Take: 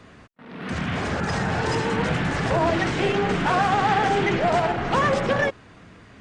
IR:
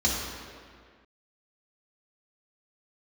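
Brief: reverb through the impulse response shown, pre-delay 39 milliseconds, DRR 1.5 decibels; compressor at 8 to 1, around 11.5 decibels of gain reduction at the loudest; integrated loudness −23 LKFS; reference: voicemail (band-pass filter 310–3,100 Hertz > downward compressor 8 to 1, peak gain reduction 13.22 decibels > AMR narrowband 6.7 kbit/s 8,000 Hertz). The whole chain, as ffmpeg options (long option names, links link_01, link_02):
-filter_complex "[0:a]acompressor=threshold=-29dB:ratio=8,asplit=2[link_01][link_02];[1:a]atrim=start_sample=2205,adelay=39[link_03];[link_02][link_03]afir=irnorm=-1:irlink=0,volume=-13.5dB[link_04];[link_01][link_04]amix=inputs=2:normalize=0,highpass=310,lowpass=3100,acompressor=threshold=-38dB:ratio=8,volume=21dB" -ar 8000 -c:a libopencore_amrnb -b:a 6700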